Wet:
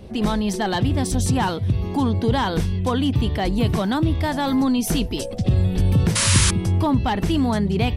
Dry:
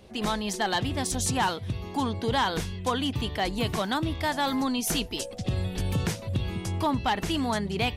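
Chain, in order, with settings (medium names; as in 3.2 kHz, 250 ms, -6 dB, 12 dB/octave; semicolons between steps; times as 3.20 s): bass shelf 460 Hz +11.5 dB; band-stop 6.8 kHz, Q 13; in parallel at -1 dB: peak limiter -22.5 dBFS, peak gain reduction 15 dB; on the sum: painted sound noise, 6.15–6.51 s, 860–11000 Hz -18 dBFS; trim -2 dB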